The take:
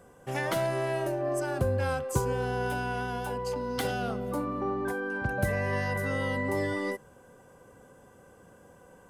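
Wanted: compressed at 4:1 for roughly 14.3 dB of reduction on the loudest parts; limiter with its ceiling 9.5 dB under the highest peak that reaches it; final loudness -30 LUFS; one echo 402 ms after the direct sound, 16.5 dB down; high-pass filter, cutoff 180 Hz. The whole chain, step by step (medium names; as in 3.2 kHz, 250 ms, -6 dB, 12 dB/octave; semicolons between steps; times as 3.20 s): high-pass 180 Hz; compression 4:1, threshold -44 dBFS; peak limiter -39.5 dBFS; delay 402 ms -16.5 dB; trim +18 dB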